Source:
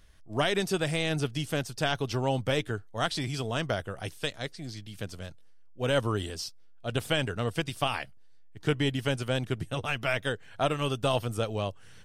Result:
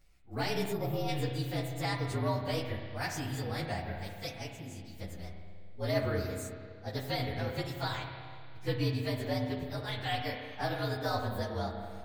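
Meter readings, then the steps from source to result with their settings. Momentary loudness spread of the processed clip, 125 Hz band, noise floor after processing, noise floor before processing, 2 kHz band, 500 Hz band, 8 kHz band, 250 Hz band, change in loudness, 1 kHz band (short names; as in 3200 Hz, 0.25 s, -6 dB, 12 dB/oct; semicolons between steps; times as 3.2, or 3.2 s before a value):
12 LU, -3.0 dB, -47 dBFS, -49 dBFS, -6.5 dB, -5.5 dB, -6.5 dB, -4.0 dB, -5.0 dB, -3.5 dB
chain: inharmonic rescaling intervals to 114%; spring tank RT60 2.1 s, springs 31/35 ms, chirp 25 ms, DRR 3 dB; spectral gain 0.72–1.08, 1400–11000 Hz -11 dB; gain -3.5 dB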